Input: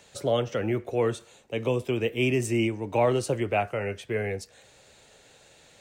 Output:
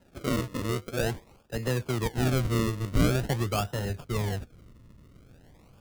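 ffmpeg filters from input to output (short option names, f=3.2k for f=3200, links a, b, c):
-af "acrusher=samples=38:mix=1:aa=0.000001:lfo=1:lforange=38:lforate=0.46,asubboost=boost=3.5:cutoff=220,volume=-3.5dB"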